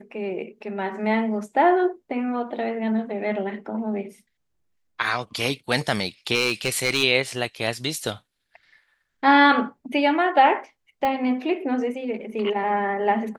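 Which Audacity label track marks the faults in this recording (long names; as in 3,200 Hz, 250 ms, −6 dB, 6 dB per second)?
6.340000	7.030000	clipping −15.5 dBFS
11.050000	11.050000	click −13 dBFS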